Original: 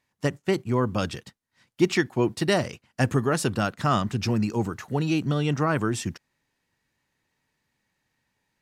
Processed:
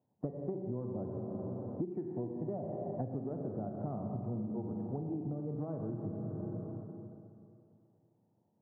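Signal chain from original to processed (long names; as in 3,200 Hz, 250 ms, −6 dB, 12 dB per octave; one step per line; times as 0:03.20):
elliptic band-pass filter 100–730 Hz, stop band 60 dB
four-comb reverb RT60 2.6 s, combs from 33 ms, DRR 2.5 dB
downward compressor 16 to 1, threshold −37 dBFS, peak gain reduction 22.5 dB
level +2.5 dB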